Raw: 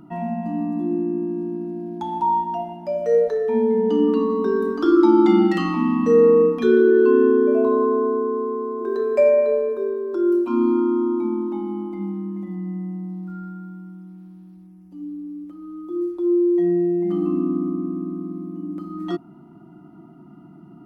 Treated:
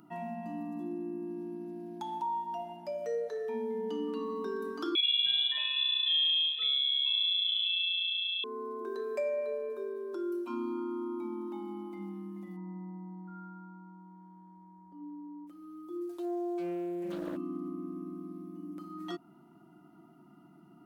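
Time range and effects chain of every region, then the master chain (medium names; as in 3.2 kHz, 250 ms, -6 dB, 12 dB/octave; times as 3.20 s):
4.95–8.44 s: comb 3.7 ms, depth 56% + frequency inversion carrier 3.7 kHz
12.56–15.46 s: Savitzky-Golay filter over 41 samples + upward compressor, threshold -38 dBFS + whistle 950 Hz -48 dBFS
16.09–17.37 s: treble shelf 2.5 kHz +11.5 dB + loudspeaker Doppler distortion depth 0.47 ms
whole clip: tilt EQ +2.5 dB/octave; compression 2:1, threshold -28 dBFS; trim -8 dB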